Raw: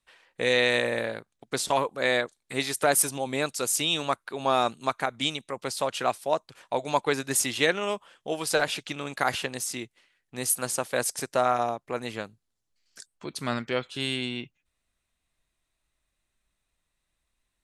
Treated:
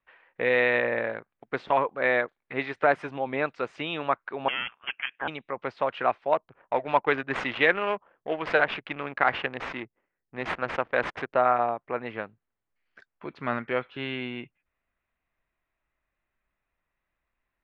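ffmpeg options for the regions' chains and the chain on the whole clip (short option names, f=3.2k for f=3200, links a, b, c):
-filter_complex "[0:a]asettb=1/sr,asplit=3[a][b][c];[a]atrim=end=4.484[d];[b]atrim=start=4.48:end=5.28,asetpts=PTS-STARTPTS,afade=t=in:d=0.004:c=qsin,afade=t=out:st=0.796:d=0.004:c=qsin,aeval=exprs='clip(val(0),-1,0.0501)':c=same,highpass=f=690:w=0.5412,highpass=f=690:w=1.3066,lowpass=f=3.3k:t=q:w=0.5098,lowpass=f=3.3k:t=q:w=0.6013,lowpass=f=3.3k:t=q:w=0.9,lowpass=f=3.3k:t=q:w=2.563,afreqshift=-3900[e];[c]atrim=start=5.276[f];[d][e]acrossfade=d=0.004:c1=hsin:c2=qsin[g];[g][f]acrossfade=d=0.004:c1=qsin:c2=hsin,asettb=1/sr,asplit=3[h][i][j];[h]atrim=end=6.324[k];[i]atrim=start=6.32:end=11.35,asetpts=PTS-STARTPTS,afade=t=in:d=0.004:c=qsin,afade=t=out:st=5.026:d=0.004:c=qsin,aemphasis=mode=production:type=75kf,adynamicsmooth=sensitivity=5.5:basefreq=620[l];[j]atrim=start=11.346[m];[k][l]acrossfade=d=0.004:c1=hsin:c2=qsin[n];[n][m]acrossfade=d=0.004:c1=qsin:c2=hsin,lowpass=f=2.3k:w=0.5412,lowpass=f=2.3k:w=1.3066,lowshelf=f=340:g=-7.5,volume=3dB"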